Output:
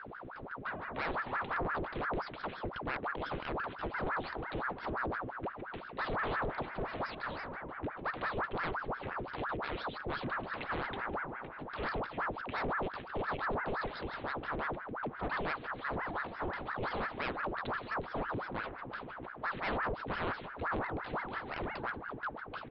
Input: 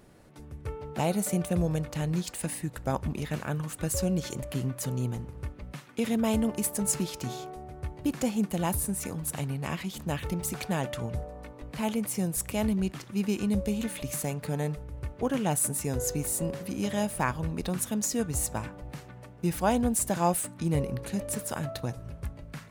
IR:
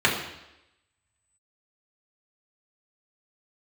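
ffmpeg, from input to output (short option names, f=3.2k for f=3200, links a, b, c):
-af "aeval=exprs='val(0)+0.00708*(sin(2*PI*60*n/s)+sin(2*PI*2*60*n/s)/2+sin(2*PI*3*60*n/s)/3+sin(2*PI*4*60*n/s)/4+sin(2*PI*5*60*n/s)/5)':c=same,aresample=8000,asoftclip=type=tanh:threshold=-28.5dB,aresample=44100,aeval=exprs='val(0)*sin(2*PI*870*n/s+870*0.8/5.8*sin(2*PI*5.8*n/s))':c=same"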